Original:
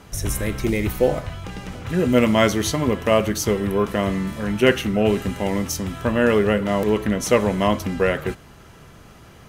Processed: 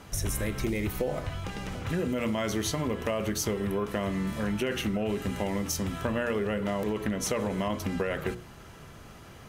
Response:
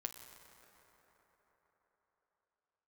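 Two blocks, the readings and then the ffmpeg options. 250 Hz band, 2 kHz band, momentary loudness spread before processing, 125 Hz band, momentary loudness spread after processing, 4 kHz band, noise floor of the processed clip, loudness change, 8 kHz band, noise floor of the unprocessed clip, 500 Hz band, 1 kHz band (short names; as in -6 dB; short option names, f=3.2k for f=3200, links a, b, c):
-9.0 dB, -10.0 dB, 9 LU, -8.0 dB, 7 LU, -8.5 dB, -48 dBFS, -10.0 dB, -5.5 dB, -46 dBFS, -11.0 dB, -10.0 dB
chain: -af "bandreject=f=60:t=h:w=6,bandreject=f=120:t=h:w=6,bandreject=f=180:t=h:w=6,bandreject=f=240:t=h:w=6,bandreject=f=300:t=h:w=6,bandreject=f=360:t=h:w=6,bandreject=f=420:t=h:w=6,bandreject=f=480:t=h:w=6,alimiter=limit=-11.5dB:level=0:latency=1:release=21,acompressor=threshold=-24dB:ratio=6,volume=-2dB"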